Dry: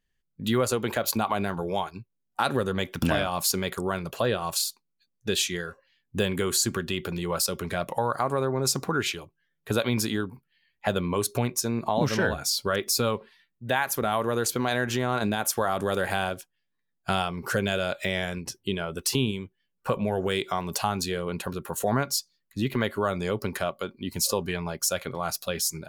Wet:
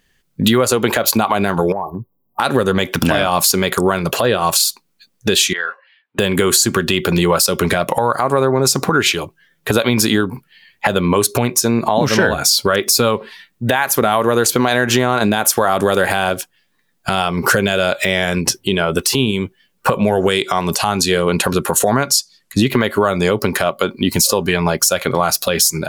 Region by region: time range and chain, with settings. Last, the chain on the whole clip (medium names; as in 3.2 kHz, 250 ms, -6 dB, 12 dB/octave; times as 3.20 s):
1.72–2.40 s: brick-wall FIR band-stop 1.2–12 kHz + compression 4:1, threshold -40 dBFS
5.53–6.19 s: high-pass 1.1 kHz + distance through air 440 m
19.96–22.70 s: low-pass 11 kHz + treble shelf 5.1 kHz +5.5 dB
whole clip: bass shelf 95 Hz -9.5 dB; compression, threshold -32 dBFS; loudness maximiser +22.5 dB; trim -1 dB